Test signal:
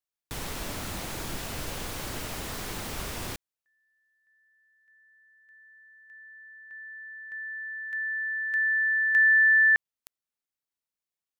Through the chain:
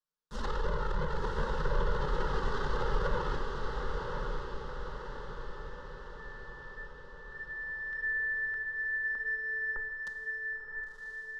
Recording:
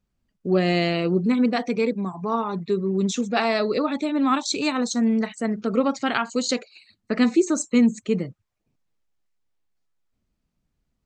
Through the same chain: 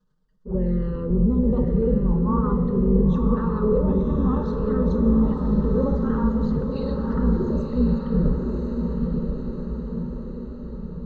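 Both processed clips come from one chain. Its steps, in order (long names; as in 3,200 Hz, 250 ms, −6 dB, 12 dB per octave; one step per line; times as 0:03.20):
sub-octave generator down 2 octaves, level +3 dB
low-pass filter 4,100 Hz 12 dB per octave
in parallel at −1.5 dB: downward compressor, threshold −28 dBFS
on the sum: transient designer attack −11 dB, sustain +10 dB
brickwall limiter −12 dBFS
treble cut that deepens with the level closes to 1,000 Hz, closed at −21 dBFS
flanger swept by the level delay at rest 6.6 ms, full sweep at −16 dBFS
phaser with its sweep stopped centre 470 Hz, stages 8
on a send: feedback delay with all-pass diffusion 1,038 ms, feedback 56%, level −3.5 dB
on the sum: reverb whose tail is shaped and stops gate 450 ms falling, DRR 7 dB
level +1.5 dB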